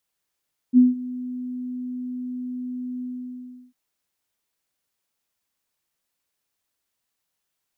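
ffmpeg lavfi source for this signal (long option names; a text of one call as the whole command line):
ffmpeg -f lavfi -i "aevalsrc='0.376*sin(2*PI*250*t)':duration=2.999:sample_rate=44100,afade=type=in:duration=0.045,afade=type=out:start_time=0.045:duration=0.169:silence=0.106,afade=type=out:start_time=2.29:duration=0.709" out.wav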